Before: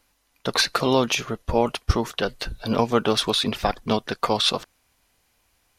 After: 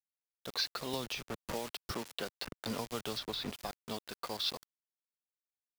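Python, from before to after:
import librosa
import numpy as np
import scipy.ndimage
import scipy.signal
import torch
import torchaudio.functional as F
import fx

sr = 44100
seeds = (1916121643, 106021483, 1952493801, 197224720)

y = fx.ladder_lowpass(x, sr, hz=5500.0, resonance_pct=55)
y = fx.low_shelf(y, sr, hz=65.0, db=-4.0)
y = fx.quant_dither(y, sr, seeds[0], bits=6, dither='none')
y = fx.band_squash(y, sr, depth_pct=100, at=(0.93, 3.5))
y = y * 10.0 ** (-9.0 / 20.0)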